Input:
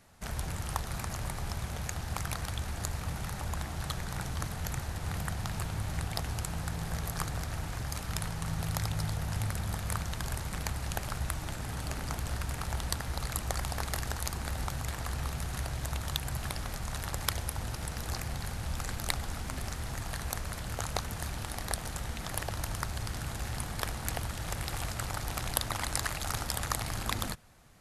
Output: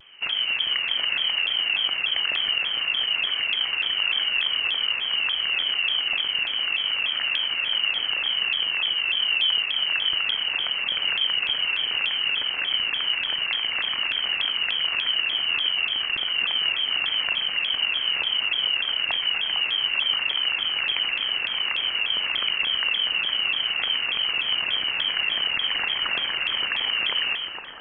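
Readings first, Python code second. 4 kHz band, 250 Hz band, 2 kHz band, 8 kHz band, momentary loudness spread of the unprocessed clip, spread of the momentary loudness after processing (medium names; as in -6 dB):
+23.0 dB, no reading, +16.5 dB, under -40 dB, 4 LU, 2 LU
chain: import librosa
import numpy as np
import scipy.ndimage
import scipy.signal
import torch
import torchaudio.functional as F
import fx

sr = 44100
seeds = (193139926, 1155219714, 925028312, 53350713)

p1 = fx.over_compress(x, sr, threshold_db=-37.0, ratio=-1.0)
p2 = x + (p1 * librosa.db_to_amplitude(0.0))
p3 = fx.low_shelf(p2, sr, hz=480.0, db=4.0)
p4 = p3 + fx.echo_split(p3, sr, split_hz=1300.0, low_ms=125, high_ms=459, feedback_pct=52, wet_db=-5, dry=0)
p5 = fx.freq_invert(p4, sr, carrier_hz=3000)
p6 = fx.low_shelf(p5, sr, hz=170.0, db=-6.5)
y = fx.vibrato_shape(p6, sr, shape='saw_down', rate_hz=3.4, depth_cents=160.0)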